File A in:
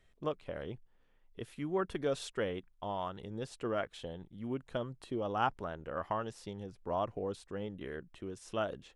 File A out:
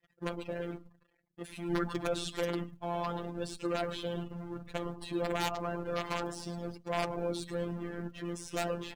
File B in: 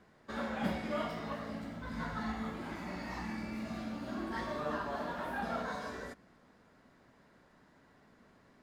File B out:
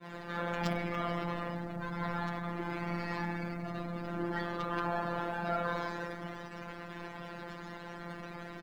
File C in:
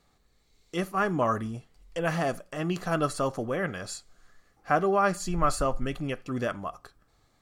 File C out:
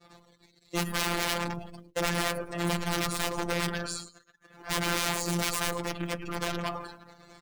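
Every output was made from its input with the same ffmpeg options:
-filter_complex "[0:a]aeval=exprs='val(0)+0.5*0.0211*sgn(val(0))':c=same,highpass=120,asplit=7[a][b][c][d][e][f][g];[b]adelay=106,afreqshift=-140,volume=-8dB[h];[c]adelay=212,afreqshift=-280,volume=-13.5dB[i];[d]adelay=318,afreqshift=-420,volume=-19dB[j];[e]adelay=424,afreqshift=-560,volume=-24.5dB[k];[f]adelay=530,afreqshift=-700,volume=-30.1dB[l];[g]adelay=636,afreqshift=-840,volume=-35.6dB[m];[a][h][i][j][k][l][m]amix=inputs=7:normalize=0,asplit=2[n][o];[o]acompressor=threshold=-38dB:ratio=12,volume=-2dB[p];[n][p]amix=inputs=2:normalize=0,aeval=exprs='(mod(10.6*val(0)+1,2)-1)/10.6':c=same,afftdn=nr=21:nf=-40,afftfilt=real='hypot(re,im)*cos(PI*b)':imag='0':win_size=1024:overlap=0.75,agate=range=-33dB:threshold=-33dB:ratio=3:detection=peak"

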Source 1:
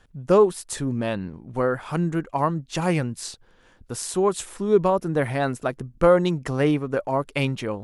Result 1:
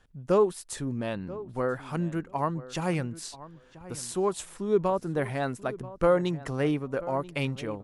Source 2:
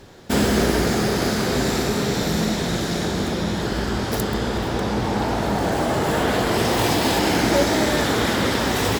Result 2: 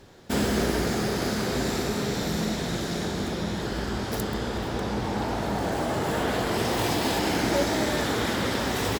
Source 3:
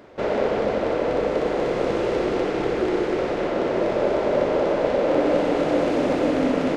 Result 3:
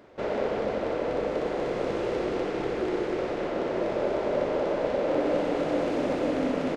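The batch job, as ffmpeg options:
-filter_complex "[0:a]asplit=2[a][b];[b]adelay=985,lowpass=f=2.1k:p=1,volume=-16.5dB,asplit=2[c][d];[d]adelay=985,lowpass=f=2.1k:p=1,volume=0.16[e];[a][c][e]amix=inputs=3:normalize=0,volume=-6dB"

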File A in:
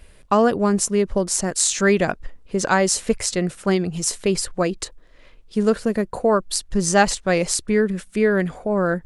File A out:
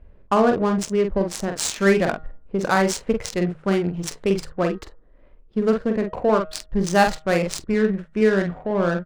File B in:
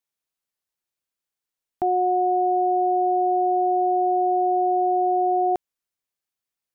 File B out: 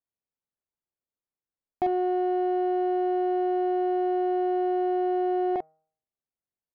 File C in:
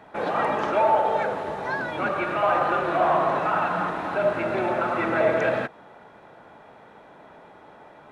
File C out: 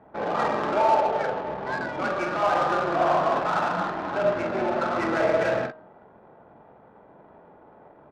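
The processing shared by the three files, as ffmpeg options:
-filter_complex "[0:a]asplit=2[a][b];[b]adelay=46,volume=-5dB[c];[a][c]amix=inputs=2:normalize=0,bandreject=f=157.3:t=h:w=4,bandreject=f=314.6:t=h:w=4,bandreject=f=471.9:t=h:w=4,bandreject=f=629.2:t=h:w=4,bandreject=f=786.5:t=h:w=4,bandreject=f=943.8:t=h:w=4,bandreject=f=1.1011k:t=h:w=4,bandreject=f=1.2584k:t=h:w=4,bandreject=f=1.4157k:t=h:w=4,bandreject=f=1.573k:t=h:w=4,bandreject=f=1.7303k:t=h:w=4,bandreject=f=1.8876k:t=h:w=4,adynamicsmooth=sensitivity=2:basefreq=990,volume=-1.5dB"

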